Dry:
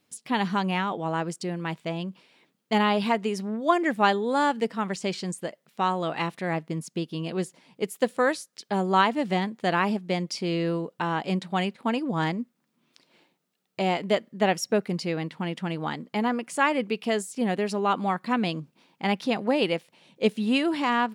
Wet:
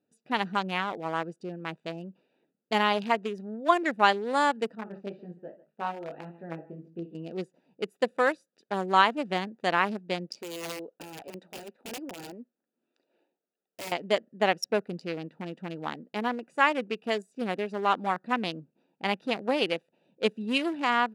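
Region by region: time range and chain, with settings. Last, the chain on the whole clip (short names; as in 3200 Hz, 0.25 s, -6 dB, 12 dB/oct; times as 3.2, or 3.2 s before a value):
4.75–7.15 tapped delay 53/142 ms -11.5/-17 dB + chorus 1.8 Hz, delay 17.5 ms, depth 3 ms + air absorption 370 m
10.39–13.92 HPF 330 Hz + wrapped overs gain 25 dB
whole clip: Wiener smoothing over 41 samples; HPF 560 Hz 6 dB/oct; gain +2 dB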